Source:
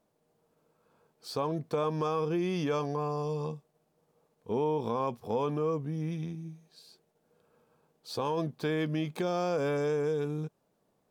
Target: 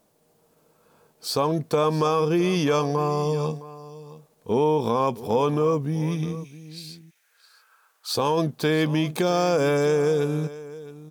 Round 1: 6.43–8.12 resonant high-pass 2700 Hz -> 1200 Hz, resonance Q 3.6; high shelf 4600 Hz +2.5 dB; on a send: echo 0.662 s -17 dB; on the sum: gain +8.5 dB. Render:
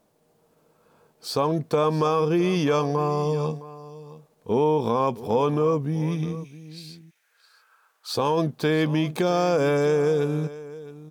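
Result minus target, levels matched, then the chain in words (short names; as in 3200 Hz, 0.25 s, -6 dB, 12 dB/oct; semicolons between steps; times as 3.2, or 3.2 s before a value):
8000 Hz band -4.0 dB
6.43–8.12 resonant high-pass 2700 Hz -> 1200 Hz, resonance Q 3.6; high shelf 4600 Hz +8.5 dB; on a send: echo 0.662 s -17 dB; on the sum: gain +8.5 dB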